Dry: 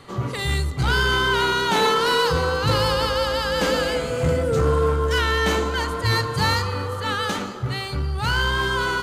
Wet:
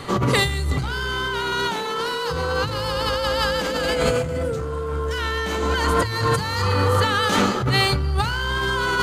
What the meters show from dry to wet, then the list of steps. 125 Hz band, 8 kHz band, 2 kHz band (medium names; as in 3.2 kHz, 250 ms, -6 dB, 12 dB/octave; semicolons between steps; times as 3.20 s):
0.0 dB, +0.5 dB, -1.0 dB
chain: compressor with a negative ratio -28 dBFS, ratio -1; trim +5.5 dB